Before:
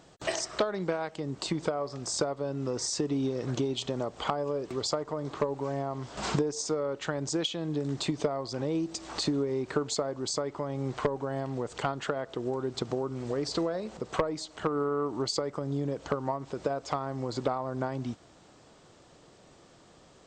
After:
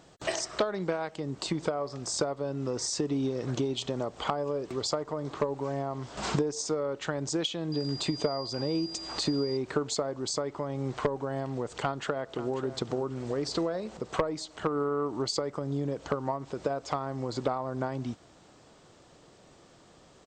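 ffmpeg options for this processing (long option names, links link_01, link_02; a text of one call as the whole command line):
ffmpeg -i in.wav -filter_complex "[0:a]asettb=1/sr,asplit=3[link_01][link_02][link_03];[link_01]atrim=end=7.724[link_04];[link_02]atrim=start=7.72:end=9.57,asetpts=PTS-STARTPTS,afade=type=in:duration=0.004:curve=qsin,afade=type=out:start_time=1.846:duration=0.004:curve=qsin,aeval=exprs='val(0)+0.0112*sin(2*PI*4800*n/s)':channel_layout=same[link_05];[link_03]atrim=start=9.566[link_06];[link_04][link_05]acrossfade=duration=0.004:curve1=hsin:curve2=qsin[link_07];[link_07][link_06]acrossfade=duration=0.004:curve1=qsin:curve2=hsin,asplit=2[link_08][link_09];[link_09]afade=type=in:start_time=11.81:duration=0.01,afade=type=out:start_time=12.49:duration=0.01,aecho=0:1:540|1080|1620:0.237137|0.0592843|0.0148211[link_10];[link_08][link_10]amix=inputs=2:normalize=0" out.wav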